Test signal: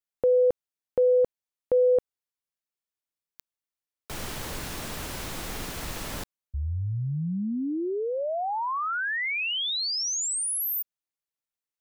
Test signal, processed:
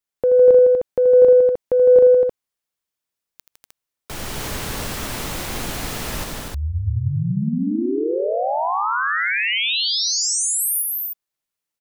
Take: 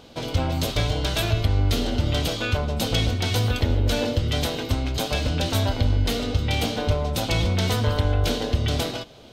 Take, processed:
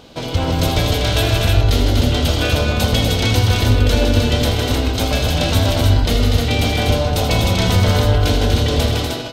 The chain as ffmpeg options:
ffmpeg -i in.wav -af "acontrast=41,aecho=1:1:80|158|244|308:0.355|0.473|0.562|0.631,volume=-1dB" out.wav

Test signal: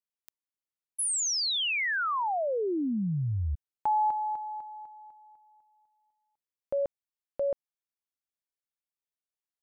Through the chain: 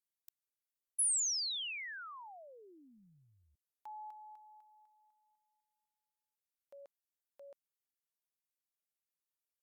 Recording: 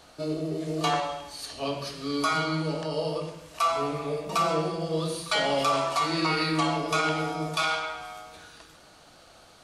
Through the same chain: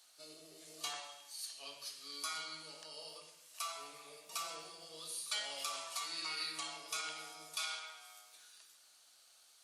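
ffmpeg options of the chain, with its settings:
ffmpeg -i in.wav -af "aderivative,volume=-4dB" -ar 48000 -c:a libopus -b:a 64k out.opus

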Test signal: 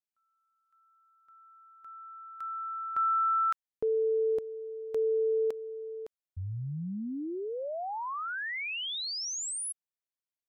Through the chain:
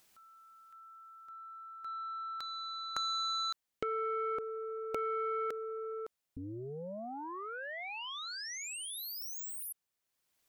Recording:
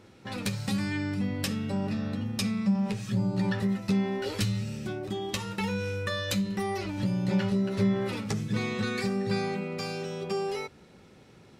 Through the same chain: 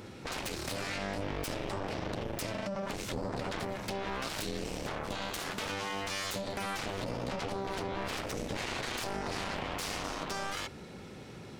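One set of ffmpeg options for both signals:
ffmpeg -i in.wav -af "alimiter=level_in=0.5dB:limit=-24dB:level=0:latency=1:release=77,volume=-0.5dB,acompressor=threshold=-40dB:ratio=3:attack=7.2:release=44:knee=6:detection=peak,aeval=exprs='0.0531*(cos(1*acos(clip(val(0)/0.0531,-1,1)))-cos(1*PI/2))+0.015*(cos(7*acos(clip(val(0)/0.0531,-1,1)))-cos(7*PI/2))':channel_layout=same,asoftclip=type=tanh:threshold=-32.5dB,acompressor=mode=upward:threshold=-56dB:ratio=2.5:attack=0.64:release=867:knee=2.83:detection=peak,volume=8dB" out.wav

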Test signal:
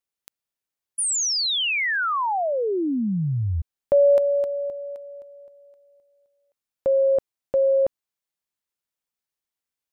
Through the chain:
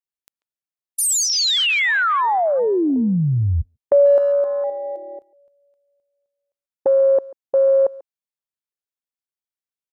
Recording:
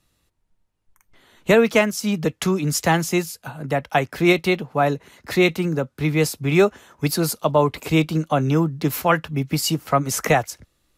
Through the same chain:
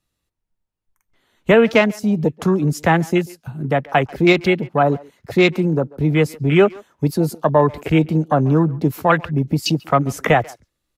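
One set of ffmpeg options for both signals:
ffmpeg -i in.wav -filter_complex "[0:a]afwtdn=0.0398,asplit=2[link_01][link_02];[link_02]acompressor=threshold=-25dB:ratio=6:attack=2.4:release=95:knee=6:detection=peak,volume=1dB[link_03];[link_01][link_03]amix=inputs=2:normalize=0,asplit=2[link_04][link_05];[link_05]adelay=140,highpass=300,lowpass=3400,asoftclip=type=hard:threshold=-12.5dB,volume=-21dB[link_06];[link_04][link_06]amix=inputs=2:normalize=0,volume=1dB" out.wav

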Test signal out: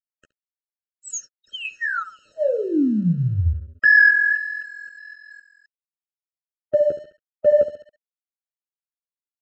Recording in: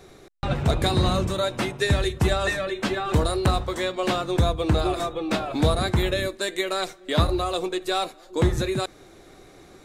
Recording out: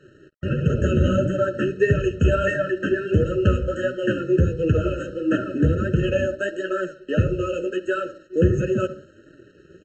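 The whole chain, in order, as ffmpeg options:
ffmpeg -i in.wav -filter_complex "[0:a]afftfilt=real='re*pow(10,7/40*sin(2*PI*(0.82*log(max(b,1)*sr/1024/100)/log(2)-(0.76)*(pts-256)/sr)))':imag='im*pow(10,7/40*sin(2*PI*(0.82*log(max(b,1)*sr/1024/100)/log(2)-(0.76)*(pts-256)/sr)))':win_size=1024:overlap=0.75,asuperstop=centerf=4500:order=12:qfactor=1.8,aemphasis=mode=reproduction:type=cd,asplit=2[link_01][link_02];[link_02]adelay=69,lowpass=frequency=1100:poles=1,volume=-10dB,asplit=2[link_03][link_04];[link_04]adelay=69,lowpass=frequency=1100:poles=1,volume=0.49,asplit=2[link_05][link_06];[link_06]adelay=69,lowpass=frequency=1100:poles=1,volume=0.49,asplit=2[link_07][link_08];[link_08]adelay=69,lowpass=frequency=1100:poles=1,volume=0.49,asplit=2[link_09][link_10];[link_10]adelay=69,lowpass=frequency=1100:poles=1,volume=0.49[link_11];[link_03][link_05][link_07][link_09][link_11]amix=inputs=5:normalize=0[link_12];[link_01][link_12]amix=inputs=2:normalize=0,acontrast=72,highpass=64,flanger=delay=5.8:depth=8.5:regen=11:speed=1.5:shape=triangular,aresample=16000,aeval=exprs='sgn(val(0))*max(abs(val(0))-0.00316,0)':channel_layout=same,aresample=44100,afftfilt=real='re*eq(mod(floor(b*sr/1024/630),2),0)':imag='im*eq(mod(floor(b*sr/1024/630),2),0)':win_size=1024:overlap=0.75" out.wav

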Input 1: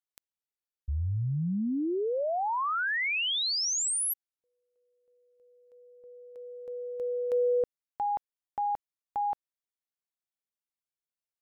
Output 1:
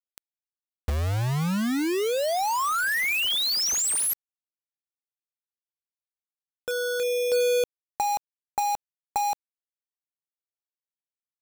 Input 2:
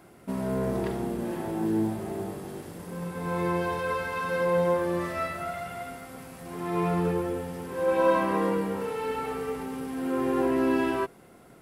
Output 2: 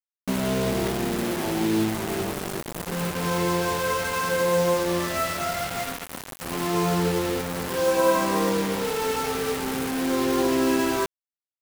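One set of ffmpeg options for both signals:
ffmpeg -i in.wav -filter_complex "[0:a]asplit=2[link_01][link_02];[link_02]acompressor=threshold=-35dB:ratio=12:attack=67:release=649:knee=6:detection=peak,volume=2.5dB[link_03];[link_01][link_03]amix=inputs=2:normalize=0,acrusher=bits=4:mix=0:aa=0.000001" out.wav

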